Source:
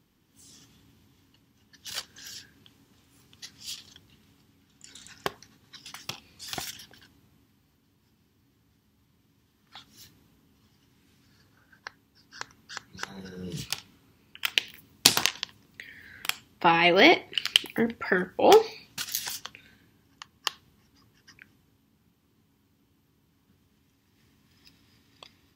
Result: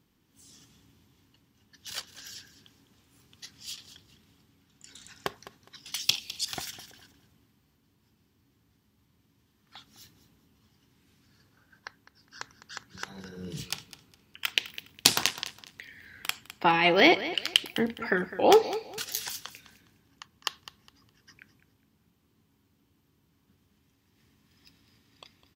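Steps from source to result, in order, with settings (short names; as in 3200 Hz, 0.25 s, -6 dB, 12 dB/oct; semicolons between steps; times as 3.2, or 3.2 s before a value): 5.92–6.45 resonant high shelf 2200 Hz +13 dB, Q 1.5; on a send: feedback echo 0.206 s, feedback 26%, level -15 dB; on the sum: gain -2 dB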